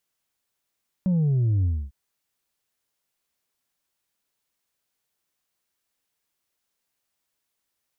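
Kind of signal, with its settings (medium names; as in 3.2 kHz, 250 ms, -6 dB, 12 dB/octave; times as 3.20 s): sub drop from 190 Hz, over 0.85 s, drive 2.5 dB, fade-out 0.27 s, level -19 dB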